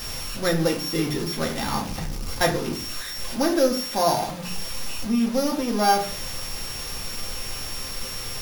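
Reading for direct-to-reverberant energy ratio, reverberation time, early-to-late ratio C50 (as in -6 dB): -0.5 dB, 0.40 s, 10.5 dB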